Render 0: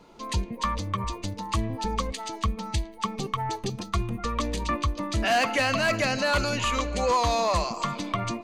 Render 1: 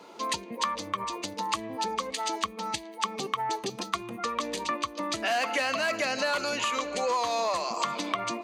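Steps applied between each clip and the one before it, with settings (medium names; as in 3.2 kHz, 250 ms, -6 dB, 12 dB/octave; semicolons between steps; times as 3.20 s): compression, threshold -31 dBFS, peak gain reduction 11 dB; high-pass 330 Hz 12 dB/octave; trim +6 dB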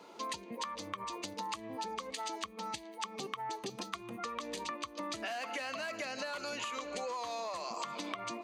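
compression, threshold -31 dBFS, peak gain reduction 8.5 dB; trim -5 dB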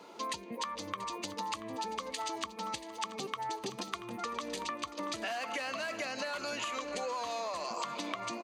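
feedback delay 683 ms, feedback 57%, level -15 dB; trim +2 dB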